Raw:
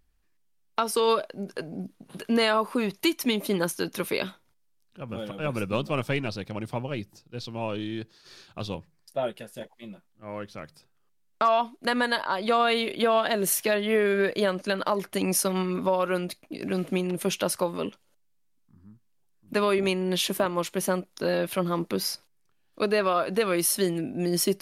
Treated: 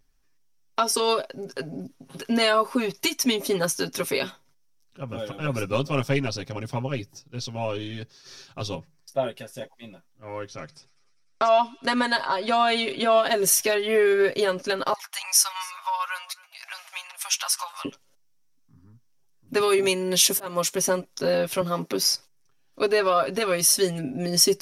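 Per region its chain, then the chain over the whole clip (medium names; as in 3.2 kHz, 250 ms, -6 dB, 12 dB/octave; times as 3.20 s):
10.48–13.14 s: low-pass 9.9 kHz 24 dB/octave + feedback echo behind a high-pass 99 ms, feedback 71%, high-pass 2.3 kHz, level -21 dB
14.93–17.85 s: steep high-pass 810 Hz 48 dB/octave + delay 273 ms -22.5 dB
19.60–20.75 s: slow attack 172 ms + high-pass 100 Hz + treble shelf 7.6 kHz +11 dB
21.61–22.03 s: high-pass 150 Hz + treble shelf 11 kHz +4.5 dB
whole clip: peaking EQ 5.7 kHz +10.5 dB 0.28 oct; comb 7.4 ms, depth 78%; dynamic bell 8 kHz, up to +4 dB, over -42 dBFS, Q 1.4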